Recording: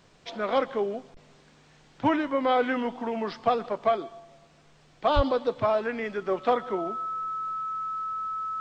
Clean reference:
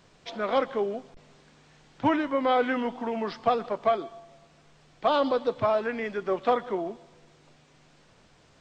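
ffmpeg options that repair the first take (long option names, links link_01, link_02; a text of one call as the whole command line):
ffmpeg -i in.wav -filter_complex "[0:a]bandreject=frequency=1300:width=30,asplit=3[link_01][link_02][link_03];[link_01]afade=type=out:start_time=5.15:duration=0.02[link_04];[link_02]highpass=frequency=140:width=0.5412,highpass=frequency=140:width=1.3066,afade=type=in:start_time=5.15:duration=0.02,afade=type=out:start_time=5.27:duration=0.02[link_05];[link_03]afade=type=in:start_time=5.27:duration=0.02[link_06];[link_04][link_05][link_06]amix=inputs=3:normalize=0" out.wav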